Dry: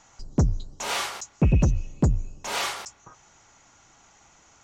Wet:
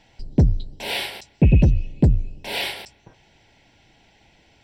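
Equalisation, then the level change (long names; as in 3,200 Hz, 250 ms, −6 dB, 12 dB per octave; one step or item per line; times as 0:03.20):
phaser with its sweep stopped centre 2,900 Hz, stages 4
+5.5 dB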